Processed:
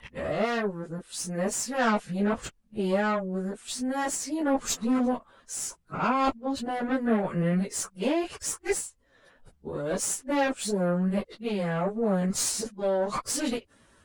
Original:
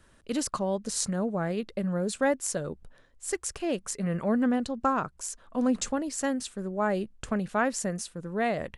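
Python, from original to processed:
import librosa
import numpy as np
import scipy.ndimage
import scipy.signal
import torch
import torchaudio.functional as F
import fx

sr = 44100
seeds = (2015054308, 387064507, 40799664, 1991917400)

y = np.flip(x).copy()
y = fx.low_shelf(y, sr, hz=64.0, db=-11.0)
y = fx.cheby_harmonics(y, sr, harmonics=(4, 5, 7, 8), levels_db=(-29, -15, -39, -20), full_scale_db=-10.5)
y = fx.stretch_vocoder_free(y, sr, factor=1.6)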